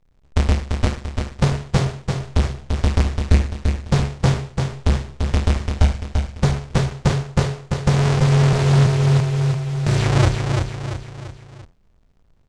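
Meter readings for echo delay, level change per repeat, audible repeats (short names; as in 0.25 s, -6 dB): 0.341 s, -6.5 dB, 4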